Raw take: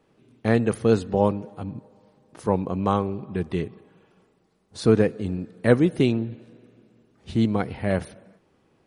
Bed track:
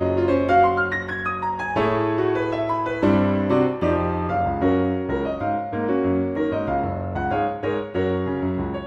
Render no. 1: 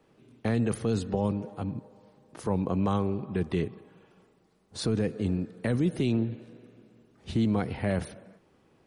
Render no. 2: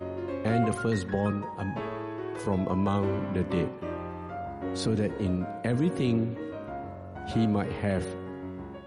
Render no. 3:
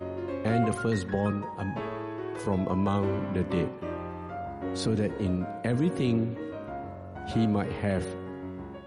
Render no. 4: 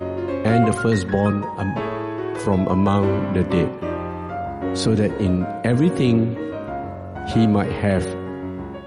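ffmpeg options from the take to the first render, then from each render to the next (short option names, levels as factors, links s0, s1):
-filter_complex "[0:a]acrossover=split=260|3000[s0][s1][s2];[s1]acompressor=threshold=0.0631:ratio=6[s3];[s0][s3][s2]amix=inputs=3:normalize=0,alimiter=limit=0.133:level=0:latency=1:release=14"
-filter_complex "[1:a]volume=0.188[s0];[0:a][s0]amix=inputs=2:normalize=0"
-af anull
-af "volume=2.82"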